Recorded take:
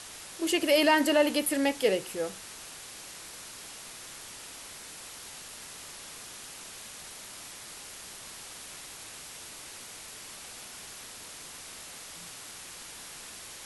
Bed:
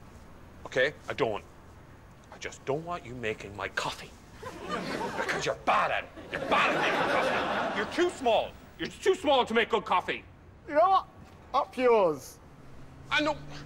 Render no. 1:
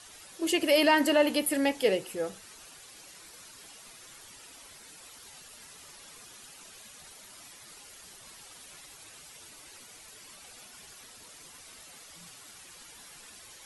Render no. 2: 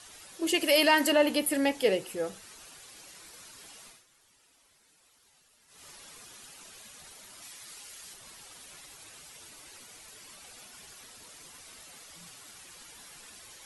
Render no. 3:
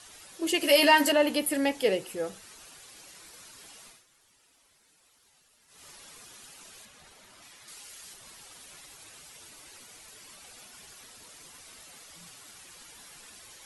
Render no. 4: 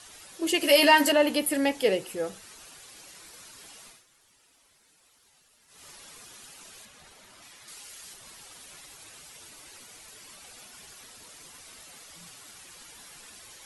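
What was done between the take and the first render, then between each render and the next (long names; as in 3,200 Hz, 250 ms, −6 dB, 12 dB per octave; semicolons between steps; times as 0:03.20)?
broadband denoise 10 dB, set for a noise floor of −46 dBFS
0:00.54–0:01.12: spectral tilt +1.5 dB per octave; 0:03.84–0:05.87: duck −14.5 dB, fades 0.20 s; 0:07.42–0:08.14: tilt shelving filter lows −3.5 dB, about 1,200 Hz
0:00.62–0:01.12: double-tracking delay 14 ms −3 dB; 0:06.85–0:07.68: high-shelf EQ 4,800 Hz −9.5 dB
level +1.5 dB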